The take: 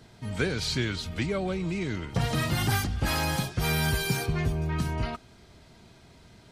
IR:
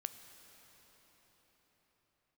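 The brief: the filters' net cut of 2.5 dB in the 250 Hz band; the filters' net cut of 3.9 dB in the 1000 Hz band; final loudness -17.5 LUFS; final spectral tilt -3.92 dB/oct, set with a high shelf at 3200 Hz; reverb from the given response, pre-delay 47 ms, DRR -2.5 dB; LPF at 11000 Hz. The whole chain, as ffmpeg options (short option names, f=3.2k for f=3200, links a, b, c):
-filter_complex "[0:a]lowpass=11k,equalizer=f=250:t=o:g=-4,equalizer=f=1k:t=o:g=-6,highshelf=f=3.2k:g=8,asplit=2[a][b];[1:a]atrim=start_sample=2205,adelay=47[c];[b][c]afir=irnorm=-1:irlink=0,volume=4.5dB[d];[a][d]amix=inputs=2:normalize=0,volume=6.5dB"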